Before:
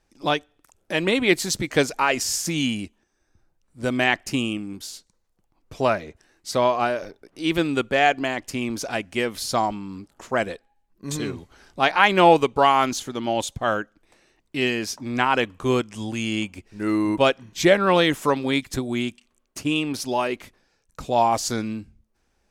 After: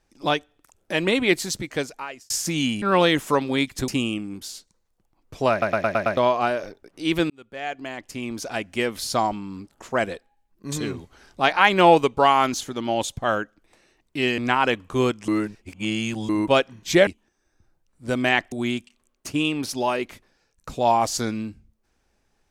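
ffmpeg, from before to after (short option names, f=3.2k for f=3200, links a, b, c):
-filter_complex "[0:a]asplit=16[a][b][c][d][e][f][g][h][i][j][k][l][m][n][o][p];[a]atrim=end=2.3,asetpts=PTS-STARTPTS,afade=t=out:st=1.18:d=1.12[q];[b]atrim=start=2.3:end=2.822,asetpts=PTS-STARTPTS,afade=t=in:d=0.004:c=hsin[r];[c]atrim=start=17.768:end=18.832[s];[d]atrim=start=4.268:end=6.012[t];[e]atrim=start=5.898:end=6.012[u];[f]atrim=start=5.898:end=6.012[v];[g]atrim=start=5.898:end=6.012[w];[h]atrim=start=5.898:end=6.012[x];[i]atrim=start=5.898:end=6.012[y];[j]atrim=start=6.558:end=7.69,asetpts=PTS-STARTPTS,afade=t=out:st=1.128:d=0.004:c=hsin[z];[k]atrim=start=7.69:end=14.772,asetpts=PTS-STARTPTS,afade=t=in:d=1.5[aa];[l]atrim=start=15.078:end=15.982[ab];[m]atrim=start=15.978:end=16.992,asetpts=PTS-STARTPTS,areverse[ac];[n]atrim=start=16.988:end=17.772[ad];[o]atrim=start=2.818:end=4.272[ae];[p]atrim=start=18.828[af];[q][r]concat=n=2:v=0:a=1[ag];[ag][s]acrossfade=d=0.004:c1=hsin:c2=hsin[ah];[ah][t]acrossfade=d=0.004:c1=hsin:c2=hsin[ai];[ai][u]acrossfade=d=0.004:c1=hsin:c2=hsin[aj];[aj][v]acrossfade=d=0.004:c1=hsin:c2=hsin[ak];[ak][w]acrossfade=d=0.004:c1=hsin:c2=hsin[al];[al][x]acrossfade=d=0.004:c1=hsin:c2=hsin[am];[am][y]acrossfade=d=0.004:c1=hsin:c2=hsin[an];[z][aa]concat=n=2:v=0:a=1[ao];[an][ao]acrossfade=d=0.004:c1=hsin:c2=hsin[ap];[ap][ab]acrossfade=d=0.004:c1=hsin:c2=hsin[aq];[aq][ac]acrossfade=d=0.004:c1=hsin:c2=hsin[ar];[ar][ad]acrossfade=d=0.004:c1=hsin:c2=hsin[as];[as][ae]acrossfade=d=0.004:c1=hsin:c2=hsin[at];[at][af]acrossfade=d=0.004:c1=hsin:c2=hsin"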